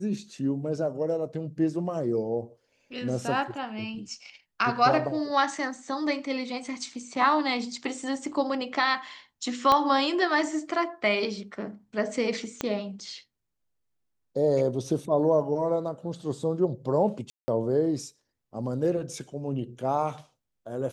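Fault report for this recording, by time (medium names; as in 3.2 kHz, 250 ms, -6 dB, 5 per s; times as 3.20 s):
9.72 s: pop -10 dBFS
12.61 s: pop -14 dBFS
17.30–17.48 s: dropout 180 ms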